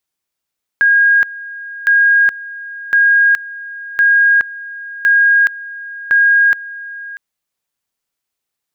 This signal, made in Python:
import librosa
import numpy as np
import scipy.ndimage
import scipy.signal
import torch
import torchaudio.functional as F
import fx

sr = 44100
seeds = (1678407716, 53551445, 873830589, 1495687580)

y = fx.two_level_tone(sr, hz=1630.0, level_db=-7.0, drop_db=18.5, high_s=0.42, low_s=0.64, rounds=6)